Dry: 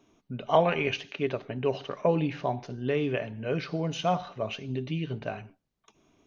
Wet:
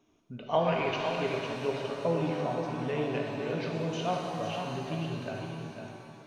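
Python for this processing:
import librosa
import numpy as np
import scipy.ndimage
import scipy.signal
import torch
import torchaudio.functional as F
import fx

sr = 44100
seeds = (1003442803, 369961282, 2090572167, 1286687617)

y = x + 10.0 ** (-7.0 / 20.0) * np.pad(x, (int(503 * sr / 1000.0), 0))[:len(x)]
y = fx.rev_shimmer(y, sr, seeds[0], rt60_s=2.6, semitones=7, shimmer_db=-8, drr_db=1.0)
y = F.gain(torch.from_numpy(y), -6.0).numpy()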